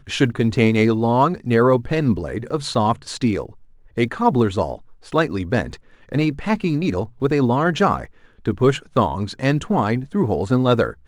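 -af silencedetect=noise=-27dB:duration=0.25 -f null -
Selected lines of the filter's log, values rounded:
silence_start: 3.46
silence_end: 3.97 | silence_duration: 0.52
silence_start: 4.75
silence_end: 5.12 | silence_duration: 0.37
silence_start: 5.74
silence_end: 6.12 | silence_duration: 0.38
silence_start: 8.05
silence_end: 8.45 | silence_duration: 0.41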